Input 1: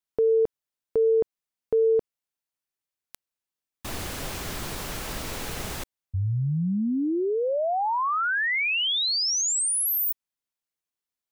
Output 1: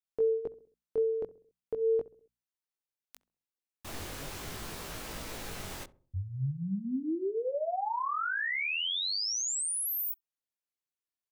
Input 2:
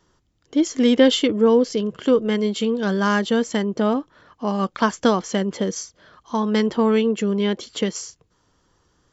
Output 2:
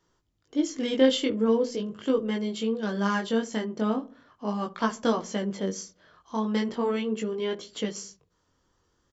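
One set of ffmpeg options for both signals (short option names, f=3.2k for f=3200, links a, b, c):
-filter_complex "[0:a]bandreject=f=60:t=h:w=6,bandreject=f=120:t=h:w=6,bandreject=f=180:t=h:w=6,bandreject=f=240:t=h:w=6,asplit=2[a][b];[b]adelay=66,lowpass=f=810:p=1,volume=-16dB,asplit=2[c][d];[d]adelay=66,lowpass=f=810:p=1,volume=0.5,asplit=2[e][f];[f]adelay=66,lowpass=f=810:p=1,volume=0.5,asplit=2[g][h];[h]adelay=66,lowpass=f=810:p=1,volume=0.5[i];[a][c][e][g][i]amix=inputs=5:normalize=0,flanger=delay=17.5:depth=5.7:speed=0.4,volume=-4.5dB"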